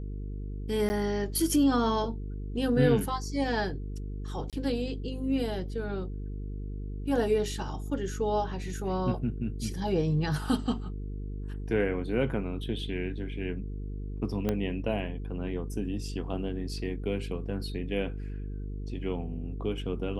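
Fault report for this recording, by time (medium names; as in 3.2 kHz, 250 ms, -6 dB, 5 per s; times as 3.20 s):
buzz 50 Hz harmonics 9 -36 dBFS
0.89–0.90 s: dropout 10 ms
4.50–4.53 s: dropout 27 ms
14.49 s: pop -15 dBFS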